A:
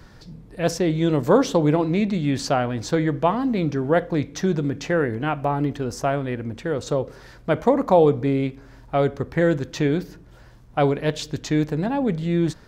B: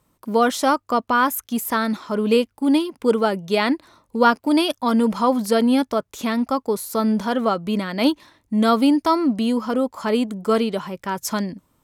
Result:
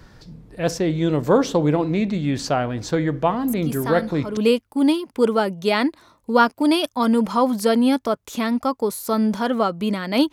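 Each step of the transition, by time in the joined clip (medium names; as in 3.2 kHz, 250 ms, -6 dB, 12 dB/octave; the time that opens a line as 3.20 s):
A
3.48 s: add B from 1.34 s 0.89 s -6.5 dB
4.37 s: go over to B from 2.23 s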